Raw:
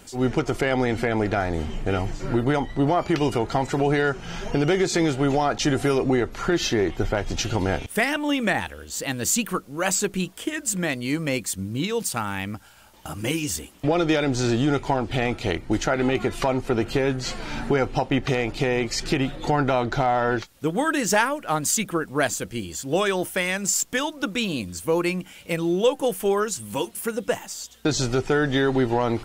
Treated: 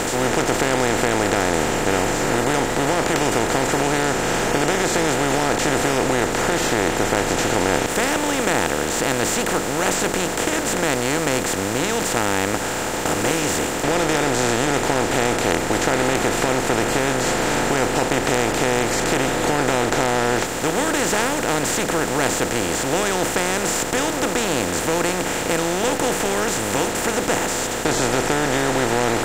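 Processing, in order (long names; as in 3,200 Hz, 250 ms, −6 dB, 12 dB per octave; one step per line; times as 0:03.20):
compressor on every frequency bin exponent 0.2
level −8 dB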